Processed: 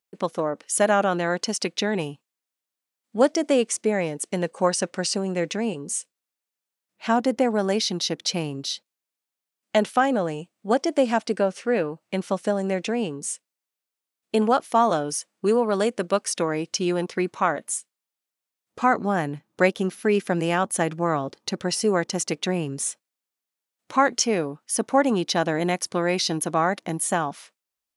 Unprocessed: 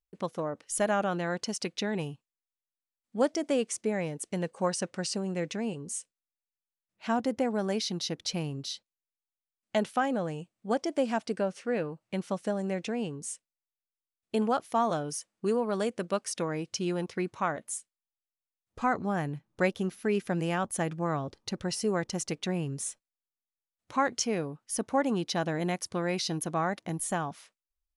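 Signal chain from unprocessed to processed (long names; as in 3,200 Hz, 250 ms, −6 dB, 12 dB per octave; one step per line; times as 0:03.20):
high-pass filter 190 Hz 12 dB per octave
level +8 dB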